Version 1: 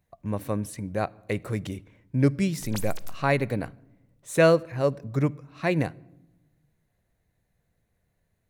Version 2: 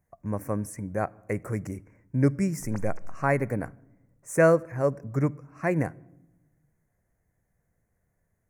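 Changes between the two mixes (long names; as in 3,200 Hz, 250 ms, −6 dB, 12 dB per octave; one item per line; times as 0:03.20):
background: add head-to-tape spacing loss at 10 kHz 20 dB
master: add Chebyshev band-stop filter 1,900–6,200 Hz, order 2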